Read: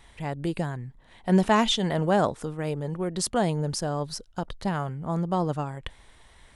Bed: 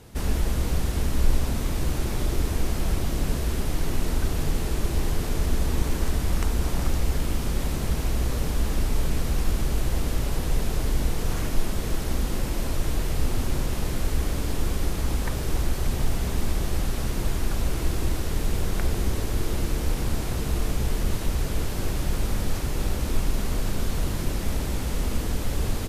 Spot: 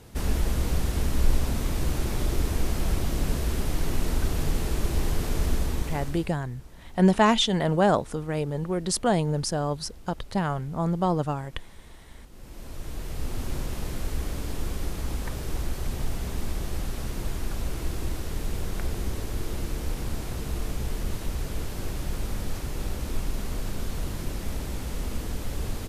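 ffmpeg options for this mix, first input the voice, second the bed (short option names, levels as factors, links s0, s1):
-filter_complex "[0:a]adelay=5700,volume=1.19[s0];[1:a]volume=7.08,afade=t=out:st=5.49:d=0.86:silence=0.0794328,afade=t=in:st=12.31:d=1.22:silence=0.125893[s1];[s0][s1]amix=inputs=2:normalize=0"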